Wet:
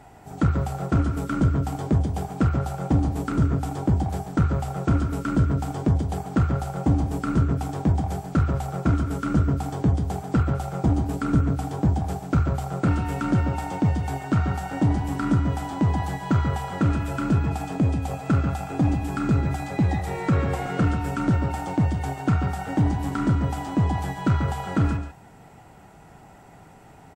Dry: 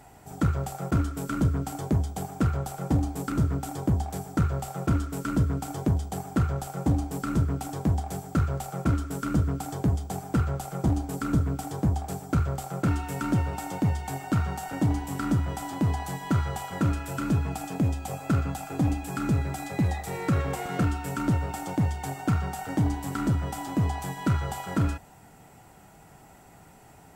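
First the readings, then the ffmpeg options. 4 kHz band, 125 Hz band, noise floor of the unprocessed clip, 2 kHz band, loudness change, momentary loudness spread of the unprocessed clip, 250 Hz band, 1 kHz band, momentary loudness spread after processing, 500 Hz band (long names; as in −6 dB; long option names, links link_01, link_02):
+1.0 dB, +4.0 dB, −52 dBFS, +3.0 dB, +4.0 dB, 4 LU, +4.0 dB, +3.5 dB, 3 LU, +4.0 dB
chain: -filter_complex "[0:a]highshelf=frequency=5500:gain=-11.5,asplit=2[link_01][link_02];[link_02]adelay=139.9,volume=-8dB,highshelf=frequency=4000:gain=-3.15[link_03];[link_01][link_03]amix=inputs=2:normalize=0,volume=3.5dB" -ar 44100 -c:a wmav2 -b:a 64k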